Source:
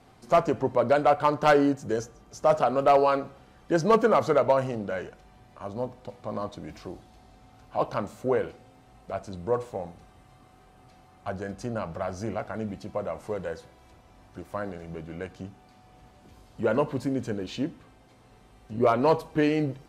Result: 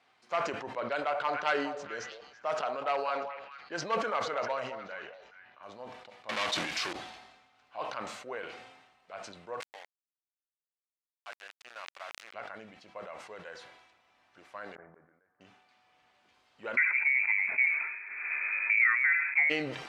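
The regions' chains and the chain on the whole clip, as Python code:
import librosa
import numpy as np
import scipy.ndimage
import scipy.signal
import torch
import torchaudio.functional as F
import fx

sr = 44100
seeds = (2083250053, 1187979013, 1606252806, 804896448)

y = fx.chain(x, sr, fx.env_lowpass(base_hz=2700.0, full_db=-15.5),
    fx.echo_stepped(ms=214, hz=680.0, octaves=1.4, feedback_pct=70, wet_db=-7.5), at=(0.8, 5.63))
y = fx.chain(y, sr, fx.leveller(passes=5),
    fx.high_shelf(hz=2900.0, db=10.5), at=(6.29, 6.93))
y = fx.chain(y, sr, fx.highpass(hz=650.0, slope=12),
    fx.sample_gate(floor_db=-36.5), at=(9.6, 12.34))
y = fx.chain(y, sr, fx.steep_lowpass(hz=1800.0, slope=48),
    fx.gate_flip(shuts_db=-30.0, range_db=-26), at=(14.75, 15.41))
y = fx.chain(y, sr, fx.freq_invert(carrier_hz=2500),
    fx.band_squash(depth_pct=100), at=(16.77, 19.5))
y = scipy.signal.sosfilt(scipy.signal.cheby1(2, 1.0, 2300.0, 'lowpass', fs=sr, output='sos'), y)
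y = np.diff(y, prepend=0.0)
y = fx.sustainer(y, sr, db_per_s=51.0)
y = y * 10.0 ** (8.0 / 20.0)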